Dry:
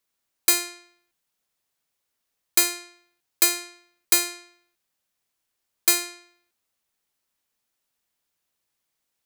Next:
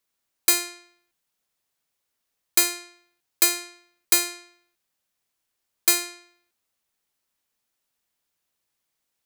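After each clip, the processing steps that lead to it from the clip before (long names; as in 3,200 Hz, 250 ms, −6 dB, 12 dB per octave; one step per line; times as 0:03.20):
no processing that can be heard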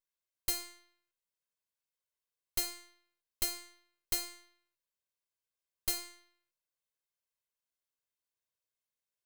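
lower of the sound and its delayed copy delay 1.9 ms
tuned comb filter 120 Hz, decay 0.47 s, harmonics all, mix 50%
level −8 dB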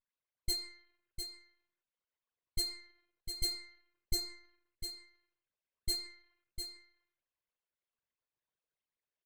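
spectral envelope exaggerated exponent 3
low-pass that shuts in the quiet parts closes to 2,800 Hz, open at −32.5 dBFS
single-tap delay 702 ms −7.5 dB
level +1 dB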